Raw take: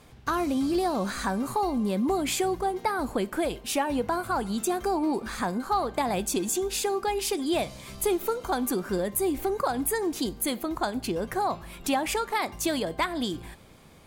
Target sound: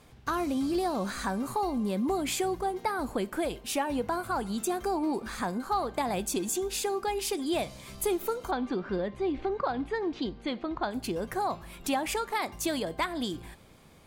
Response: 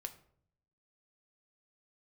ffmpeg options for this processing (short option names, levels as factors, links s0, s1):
-filter_complex "[0:a]asettb=1/sr,asplit=3[s0][s1][s2];[s0]atrim=end=8.514[s3];[s1]atrim=start=8.51:end=10.91,asetpts=PTS-STARTPTS,afade=t=in:d=0.004:c=qsin,afade=t=out:st=2.396:d=0.004:c=qsin,lowpass=f=4000:w=0.5412,lowpass=f=4000:w=1.3066[s4];[s2]atrim=start=10.906[s5];[s3][s4]acrossfade=d=0.004:c1=hsin:c2=qsin[s6];[s6][s5]acrossfade=d=0.004:c1=qsin:c2=hsin,volume=0.708"